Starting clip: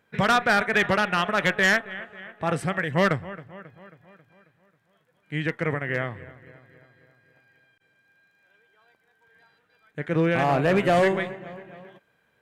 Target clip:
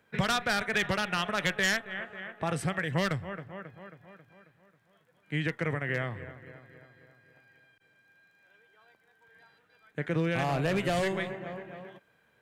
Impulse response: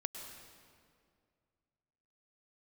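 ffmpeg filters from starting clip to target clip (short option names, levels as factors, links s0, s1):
-filter_complex "[0:a]acrossover=split=130|3000[s0][s1][s2];[s1]acompressor=threshold=0.0316:ratio=3[s3];[s0][s3][s2]amix=inputs=3:normalize=0"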